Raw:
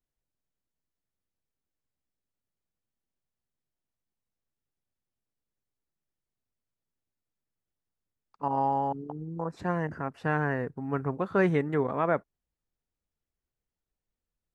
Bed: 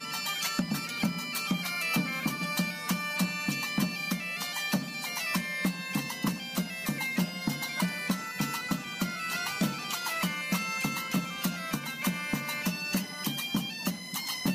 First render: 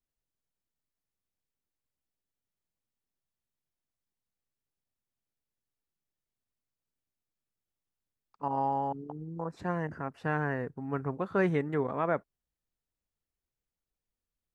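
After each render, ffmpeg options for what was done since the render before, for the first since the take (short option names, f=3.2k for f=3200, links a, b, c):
-af "volume=-3dB"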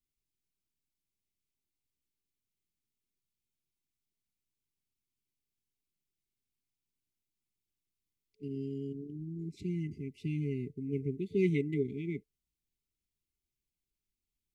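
-af "afftfilt=real='re*(1-between(b*sr/4096,440,2000))':imag='im*(1-between(b*sr/4096,440,2000))':win_size=4096:overlap=0.75"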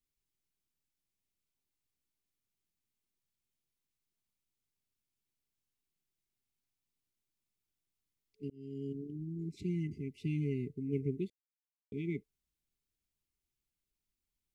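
-filter_complex "[0:a]asplit=4[a][b][c][d];[a]atrim=end=8.5,asetpts=PTS-STARTPTS,afade=t=out:st=8.496:d=0.004:c=hsin[e];[b]atrim=start=8.5:end=11.3,asetpts=PTS-STARTPTS,afade=t=in:d=0.4,afade=t=out:st=2.796:d=0.004:c=hsin[f];[c]atrim=start=11.3:end=11.92,asetpts=PTS-STARTPTS,volume=0[g];[d]atrim=start=11.92,asetpts=PTS-STARTPTS,afade=t=in:d=0.004:c=hsin[h];[e][f][g][h]concat=n=4:v=0:a=1"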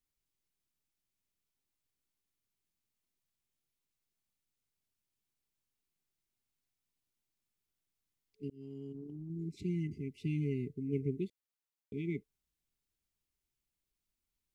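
-filter_complex "[0:a]asettb=1/sr,asplit=3[a][b][c];[a]atrim=end=8.574[d];[b]atrim=start=8.57:end=9.3,asetpts=PTS-STARTPTS,afade=t=in:d=0.004:c=qsin,afade=t=out:st=0.726:d=0.004:c=qsin,acompressor=threshold=-43dB:ratio=2.5:attack=3.2:release=140:knee=1:detection=peak[e];[c]atrim=start=9.296[f];[d][e]acrossfade=d=0.004:c1=hsin:c2=qsin[g];[g][f]acrossfade=d=0.004:c1=qsin:c2=hsin"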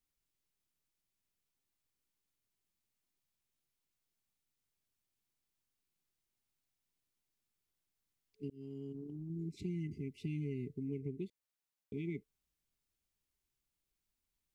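-af "alimiter=level_in=3dB:limit=-24dB:level=0:latency=1:release=440,volume=-3dB,acompressor=threshold=-37dB:ratio=3"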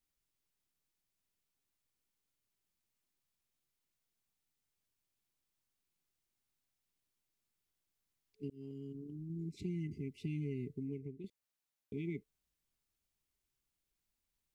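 -filter_complex "[0:a]asettb=1/sr,asplit=3[a][b][c];[a]atrim=end=8.714[d];[b]atrim=start=8.71:end=9.55,asetpts=PTS-STARTPTS,afade=t=in:d=0.004:c=qsin,afade=t=out:st=0.836:d=0.004:c=qsin,equalizer=f=720:w=1.6:g=-12[e];[c]atrim=start=9.546[f];[d][e]acrossfade=d=0.004:c1=hsin:c2=qsin[g];[g][f]acrossfade=d=0.004:c1=qsin:c2=hsin,asplit=2[h][i];[h]atrim=end=11.24,asetpts=PTS-STARTPTS,afade=t=out:st=10.77:d=0.47:silence=0.354813[j];[i]atrim=start=11.24,asetpts=PTS-STARTPTS,afade=t=in:d=0.004:c=hsin:silence=0.354813[k];[j][k]concat=n=2:v=0:a=1"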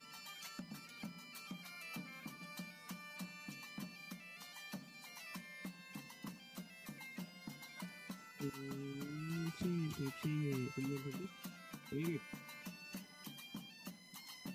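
-filter_complex "[1:a]volume=-19.5dB[a];[0:a][a]amix=inputs=2:normalize=0"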